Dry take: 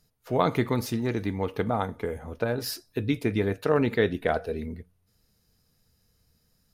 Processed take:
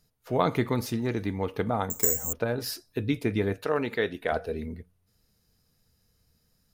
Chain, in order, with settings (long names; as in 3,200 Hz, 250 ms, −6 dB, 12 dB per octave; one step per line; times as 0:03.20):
0:01.90–0:02.33: bad sample-rate conversion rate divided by 6×, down none, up zero stuff
0:03.65–0:04.32: low-shelf EQ 280 Hz −11 dB
level −1 dB